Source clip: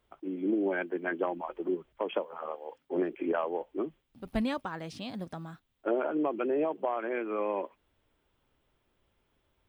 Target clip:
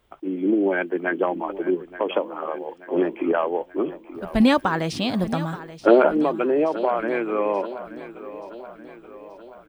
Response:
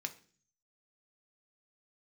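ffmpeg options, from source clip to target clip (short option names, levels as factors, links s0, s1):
-filter_complex "[0:a]asettb=1/sr,asplit=3[s0][s1][s2];[s0]atrim=end=4.404[s3];[s1]atrim=start=4.4:end=6.09,asetpts=PTS-STARTPTS,afade=t=in:d=0.004:c=qsin,afade=t=out:st=1.686:d=0.004:c=qsin,acontrast=70[s4];[s2]atrim=start=6.086[s5];[s3][s4]acrossfade=d=0.004:c1=hsin:c2=qsin[s6];[s6][s5]acrossfade=d=0.004:c1=qsin:c2=hsin,aecho=1:1:879|1758|2637|3516|4395:0.178|0.096|0.0519|0.028|0.0151,volume=2.66"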